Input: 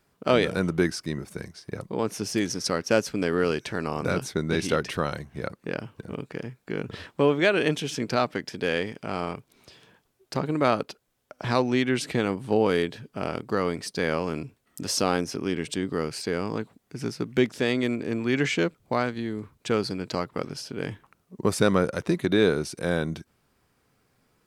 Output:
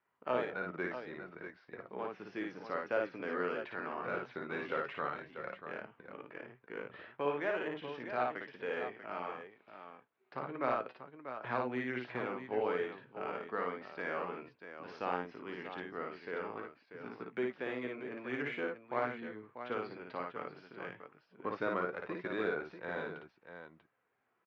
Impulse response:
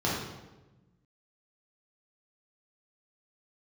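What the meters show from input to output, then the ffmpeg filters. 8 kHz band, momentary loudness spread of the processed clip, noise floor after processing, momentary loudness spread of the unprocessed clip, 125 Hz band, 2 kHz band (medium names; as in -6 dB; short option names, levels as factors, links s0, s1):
under -35 dB, 14 LU, -75 dBFS, 13 LU, -21.0 dB, -9.5 dB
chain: -filter_complex "[0:a]lowpass=2200,aderivative,acrossover=split=500|1300[s0][s1][s2];[s2]alimiter=level_in=4.73:limit=0.0631:level=0:latency=1:release=136,volume=0.211[s3];[s0][s1][s3]amix=inputs=3:normalize=0,flanger=delay=1:depth=7.4:regen=65:speed=0.13:shape=sinusoidal,aresample=16000,adynamicsmooth=sensitivity=4.5:basefreq=1700,aresample=44100,asplit=2[s4][s5];[s5]adelay=16,volume=0.211[s6];[s4][s6]amix=inputs=2:normalize=0,aecho=1:1:56|640:0.708|0.335,volume=5.01"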